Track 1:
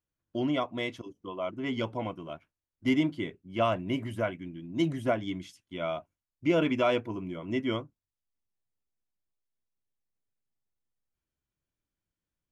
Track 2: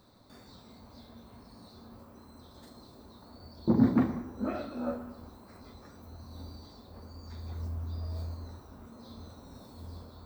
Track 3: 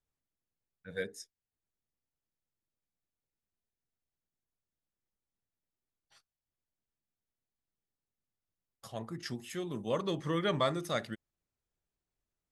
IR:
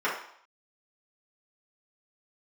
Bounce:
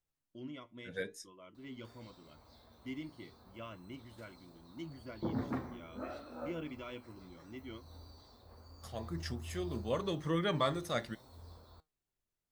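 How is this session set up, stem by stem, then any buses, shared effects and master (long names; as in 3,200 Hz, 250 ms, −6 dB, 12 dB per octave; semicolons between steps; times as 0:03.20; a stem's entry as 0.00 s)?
−12.0 dB, 0.00 s, no send, parametric band 740 Hz −12.5 dB 0.62 octaves
−1.5 dB, 1.55 s, no send, parametric band 210 Hz −9.5 dB 1.3 octaves
+2.5 dB, 0.00 s, no send, no processing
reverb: not used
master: flanger 0.77 Hz, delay 5.7 ms, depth 3 ms, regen +80%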